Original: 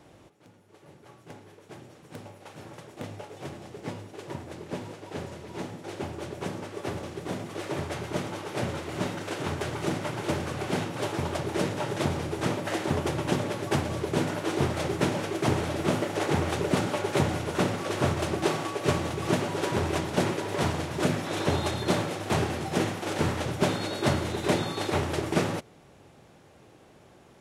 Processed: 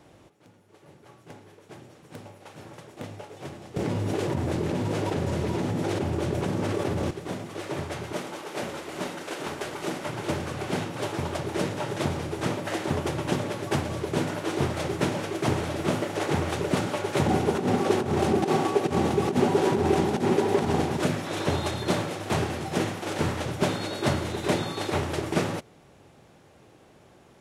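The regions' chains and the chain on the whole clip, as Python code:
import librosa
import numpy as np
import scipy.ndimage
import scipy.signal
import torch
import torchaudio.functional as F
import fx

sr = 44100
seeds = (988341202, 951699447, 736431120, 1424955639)

y = fx.chain(x, sr, fx.low_shelf(hz=420.0, db=7.0),
    fx.tremolo(hz=19.0, depth=0.29),
    fx.env_flatten(amount_pct=100), at=(3.76, 7.11))
y = fx.chain(y, sr, fx.cvsd(bps=64000),
    fx.peak_eq(hz=100.0, db=-15.0, octaves=1.2), at=(8.13, 10.06))
y = fx.chain(y, sr, fx.over_compress(threshold_db=-28.0, ratio=-0.5),
    fx.small_body(hz=(230.0, 390.0, 770.0), ring_ms=35, db=11), at=(17.26, 20.97))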